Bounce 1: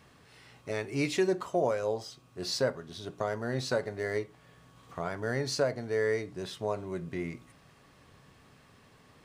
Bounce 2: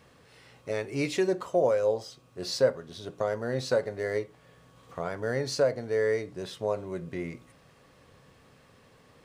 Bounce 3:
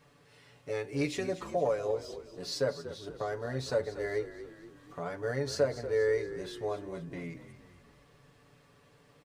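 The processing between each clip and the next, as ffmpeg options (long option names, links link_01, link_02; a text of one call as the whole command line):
ffmpeg -i in.wav -af "equalizer=frequency=510:width_type=o:width=0.3:gain=8" out.wav
ffmpeg -i in.wav -filter_complex "[0:a]aecho=1:1:6.9:0.84,asplit=6[link_01][link_02][link_03][link_04][link_05][link_06];[link_02]adelay=237,afreqshift=-38,volume=-13dB[link_07];[link_03]adelay=474,afreqshift=-76,volume=-19dB[link_08];[link_04]adelay=711,afreqshift=-114,volume=-25dB[link_09];[link_05]adelay=948,afreqshift=-152,volume=-31.1dB[link_10];[link_06]adelay=1185,afreqshift=-190,volume=-37.1dB[link_11];[link_01][link_07][link_08][link_09][link_10][link_11]amix=inputs=6:normalize=0,volume=-6.5dB" out.wav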